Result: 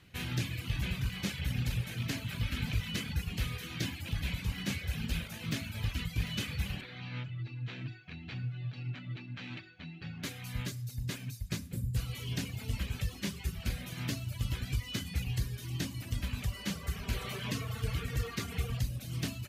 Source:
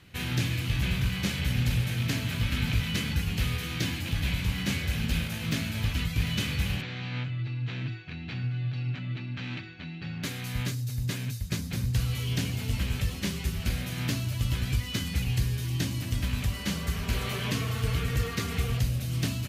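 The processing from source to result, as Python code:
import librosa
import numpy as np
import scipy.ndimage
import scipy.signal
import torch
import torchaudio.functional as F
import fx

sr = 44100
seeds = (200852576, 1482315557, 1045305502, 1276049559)

y = fx.dereverb_blind(x, sr, rt60_s=0.93)
y = fx.spec_box(y, sr, start_s=11.64, length_s=0.32, low_hz=570.0, high_hz=6900.0, gain_db=-12)
y = fx.rev_schroeder(y, sr, rt60_s=0.67, comb_ms=26, drr_db=17.5)
y = y * librosa.db_to_amplitude(-4.5)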